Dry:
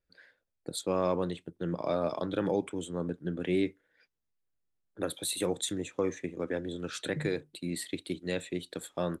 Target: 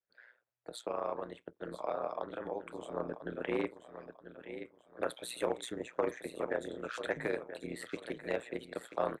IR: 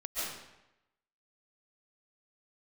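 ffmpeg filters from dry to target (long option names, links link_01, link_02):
-filter_complex "[0:a]asettb=1/sr,asplit=3[link_01][link_02][link_03];[link_01]atrim=end=0.764[link_04];[link_02]atrim=start=0.76:end=2.92,asetpts=PTS-STARTPTS,afade=type=in:duration=0.004:curve=qsin,afade=type=out:start_time=2.156:duration=0.004:curve=qsin,acompressor=threshold=-35dB:ratio=3[link_05];[link_03]atrim=start=2.916[link_06];[link_04][link_05]acrossfade=duration=0.004:curve1=hsin:curve2=qsin[link_07];[link_07][link_06]acrossfade=duration=0.004:curve1=qsin:curve2=hsin,aecho=1:1:988|1976|2964:0.266|0.0851|0.0272,tremolo=f=120:d=0.889,asoftclip=type=hard:threshold=-23.5dB,highpass=frequency=160:poles=1,acrossover=split=500 2500:gain=0.224 1 0.158[link_08][link_09][link_10];[link_08][link_09][link_10]amix=inputs=3:normalize=0,dynaudnorm=framelen=170:gausssize=3:maxgain=7dB,adynamicequalizer=threshold=0.00158:dfrequency=3300:dqfactor=0.73:tfrequency=3300:tqfactor=0.73:attack=5:release=100:ratio=0.375:range=2:mode=cutabove:tftype=bell,volume=1dB"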